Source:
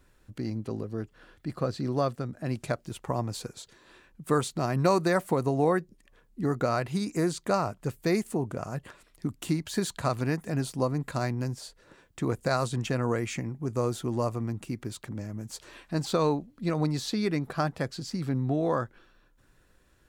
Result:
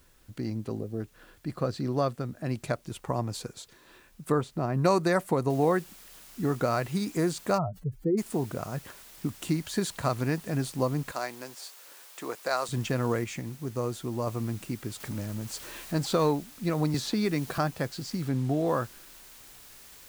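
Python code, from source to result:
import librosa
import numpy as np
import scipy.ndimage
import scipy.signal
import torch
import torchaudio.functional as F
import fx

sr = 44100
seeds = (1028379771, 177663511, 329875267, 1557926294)

y = fx.spec_box(x, sr, start_s=0.78, length_s=0.23, low_hz=830.0, high_hz=8400.0, gain_db=-10)
y = fx.lowpass(y, sr, hz=1200.0, slope=6, at=(4.32, 4.84))
y = fx.noise_floor_step(y, sr, seeds[0], at_s=5.5, before_db=-66, after_db=-51, tilt_db=0.0)
y = fx.spec_expand(y, sr, power=2.8, at=(7.57, 8.17), fade=0.02)
y = fx.highpass(y, sr, hz=510.0, slope=12, at=(11.12, 12.69))
y = fx.law_mismatch(y, sr, coded='mu', at=(15.0, 16.31))
y = fx.band_squash(y, sr, depth_pct=70, at=(16.94, 17.58))
y = fx.median_filter(y, sr, points=3, at=(18.28, 18.68))
y = fx.edit(y, sr, fx.clip_gain(start_s=13.24, length_s=1.03, db=-3.0), tone=tone)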